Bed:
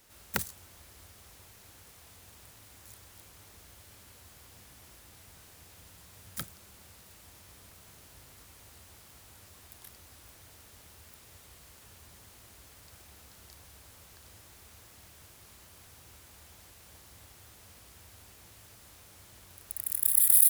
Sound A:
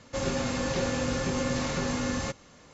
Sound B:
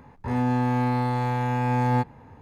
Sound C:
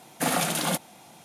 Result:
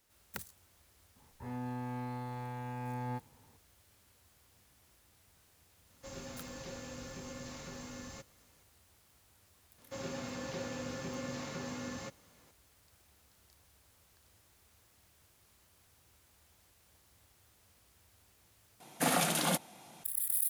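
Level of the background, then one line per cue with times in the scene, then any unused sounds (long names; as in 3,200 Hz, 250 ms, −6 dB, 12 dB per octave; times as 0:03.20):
bed −12 dB
0:01.16: mix in B −16.5 dB
0:05.90: mix in A −17.5 dB + high-shelf EQ 5,700 Hz +8 dB
0:09.78: mix in A −11.5 dB + high-pass filter 100 Hz
0:18.80: overwrite with C −4.5 dB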